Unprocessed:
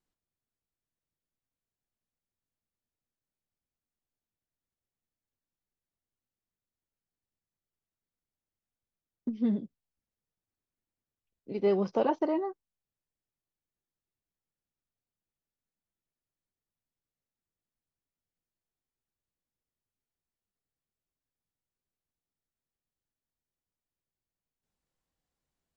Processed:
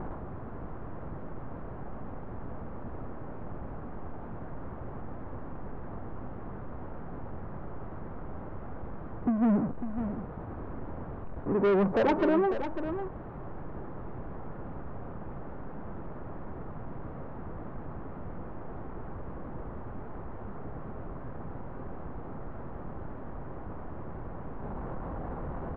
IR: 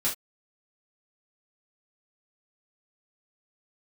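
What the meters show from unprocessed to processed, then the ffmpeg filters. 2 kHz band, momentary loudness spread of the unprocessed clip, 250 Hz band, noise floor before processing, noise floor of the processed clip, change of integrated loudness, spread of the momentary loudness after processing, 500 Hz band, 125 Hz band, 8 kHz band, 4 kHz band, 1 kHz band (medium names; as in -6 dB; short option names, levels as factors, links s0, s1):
+11.5 dB, 13 LU, +5.5 dB, under -85 dBFS, -41 dBFS, -5.5 dB, 16 LU, +4.0 dB, +13.0 dB, no reading, +3.5 dB, +6.0 dB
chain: -af "aeval=exprs='val(0)+0.5*0.0211*sgn(val(0))':c=same,lowpass=f=1200:w=0.5412,lowpass=f=1200:w=1.3066,aresample=16000,asoftclip=type=tanh:threshold=0.0398,aresample=44100,aecho=1:1:549:0.335,volume=2.24"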